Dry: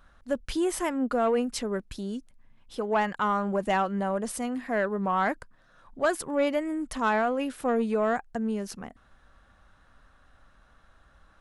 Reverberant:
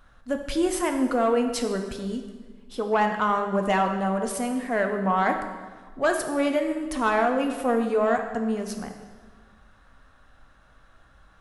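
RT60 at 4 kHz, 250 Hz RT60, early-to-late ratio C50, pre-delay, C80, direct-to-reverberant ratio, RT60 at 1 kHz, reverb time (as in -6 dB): 1.2 s, 1.7 s, 7.0 dB, 3 ms, 8.5 dB, 4.0 dB, 1.4 s, 1.4 s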